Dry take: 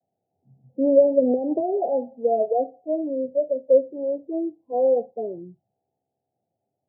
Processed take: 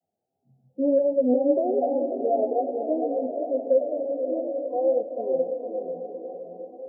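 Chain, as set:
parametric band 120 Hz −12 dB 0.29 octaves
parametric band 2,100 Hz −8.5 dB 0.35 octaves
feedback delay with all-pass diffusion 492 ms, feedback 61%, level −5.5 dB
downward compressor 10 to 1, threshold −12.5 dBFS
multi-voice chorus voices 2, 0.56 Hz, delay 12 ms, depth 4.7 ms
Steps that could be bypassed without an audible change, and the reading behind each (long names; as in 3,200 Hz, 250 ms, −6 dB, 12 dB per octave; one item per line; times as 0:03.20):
parametric band 2,100 Hz: nothing at its input above 810 Hz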